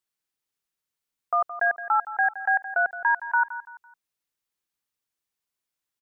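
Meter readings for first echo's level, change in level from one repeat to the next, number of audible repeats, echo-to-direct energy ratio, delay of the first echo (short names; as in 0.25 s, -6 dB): -13.5 dB, -9.5 dB, 3, -13.0 dB, 0.168 s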